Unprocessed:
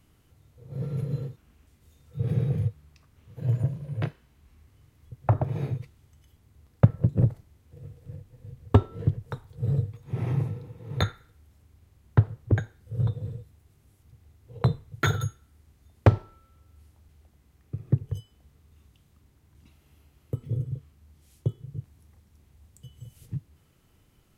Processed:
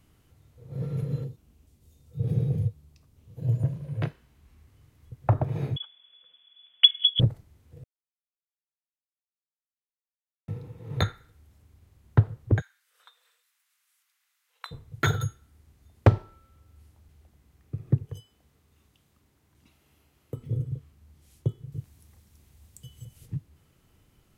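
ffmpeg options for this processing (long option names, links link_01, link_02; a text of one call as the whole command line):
ffmpeg -i in.wav -filter_complex "[0:a]asettb=1/sr,asplit=3[link_01][link_02][link_03];[link_01]atrim=end=1.244[link_04];[link_02]atrim=start=1.24:end=3.63,asetpts=PTS-STARTPTS,afade=type=in:duration=0.004:curve=qsin,afade=type=out:start_time=2.386:duration=0.004:curve=qsin,equalizer=frequency=1600:width=0.73:gain=-10[link_05];[link_03]atrim=start=3.626[link_06];[link_04][link_05]acrossfade=duration=0.004:curve1=hsin:curve2=qsin[link_07];[link_07][link_06]acrossfade=duration=0.004:curve1=qsin:curve2=hsin,asettb=1/sr,asplit=3[link_08][link_09][link_10];[link_08]atrim=end=5.764[link_11];[link_09]atrim=start=5.76:end=7.2,asetpts=PTS-STARTPTS,afade=type=in:duration=0.004:curve=qsin,afade=type=out:start_time=1.436:duration=0.004:curve=qsin,lowpass=frequency=3000:width_type=q:width=0.5098,lowpass=frequency=3000:width_type=q:width=0.6013,lowpass=frequency=3000:width_type=q:width=0.9,lowpass=frequency=3000:width_type=q:width=2.563,afreqshift=-3500[link_12];[link_10]atrim=start=7.196[link_13];[link_11][link_12]acrossfade=duration=0.004:curve1=hsin:curve2=qsin[link_14];[link_14][link_13]acrossfade=duration=0.004:curve1=qsin:curve2=hsin,asplit=3[link_15][link_16][link_17];[link_15]afade=type=out:start_time=12.6:duration=0.02[link_18];[link_16]highpass=frequency=1300:width=0.5412,highpass=frequency=1300:width=1.3066,afade=type=in:start_time=12.6:duration=0.02,afade=type=out:start_time=14.71:duration=0.02[link_19];[link_17]afade=type=in:start_time=14.71:duration=0.02[link_20];[link_18][link_19][link_20]amix=inputs=3:normalize=0,asettb=1/sr,asplit=3[link_21][link_22][link_23];[link_21]atrim=end=18.054[link_24];[link_22]atrim=start=18.05:end=20.36,asetpts=PTS-STARTPTS,afade=type=in:duration=0.004:curve=qsin,afade=type=out:start_time=2.306:duration=0.004:curve=qsin,lowshelf=frequency=140:gain=-11.5[link_25];[link_23]atrim=start=20.356[link_26];[link_24][link_25]acrossfade=duration=0.004:curve1=hsin:curve2=qsin[link_27];[link_27][link_26]acrossfade=duration=0.004:curve1=qsin:curve2=hsin,asettb=1/sr,asplit=3[link_28][link_29][link_30];[link_28]atrim=end=21.724[link_31];[link_29]atrim=start=21.72:end=23.05,asetpts=PTS-STARTPTS,afade=type=in:duration=0.004:curve=qsin,afade=type=out:start_time=1.326:duration=0.004:curve=qsin,highshelf=frequency=2900:gain=8[link_32];[link_30]atrim=start=23.046[link_33];[link_31][link_32]acrossfade=duration=0.004:curve1=hsin:curve2=qsin[link_34];[link_34][link_33]acrossfade=duration=0.004:curve1=qsin:curve2=hsin,asplit=3[link_35][link_36][link_37];[link_35]atrim=end=7.84,asetpts=PTS-STARTPTS,afade=type=out:start_time=7.836:duration=0.004:curve=hsin[link_38];[link_36]atrim=start=7.84:end=10.48,asetpts=PTS-STARTPTS,volume=0[link_39];[link_37]atrim=start=10.48,asetpts=PTS-STARTPTS,afade=type=in:duration=0.004:curve=hsin[link_40];[link_38][link_39][link_40]concat=n=3:v=0:a=1" out.wav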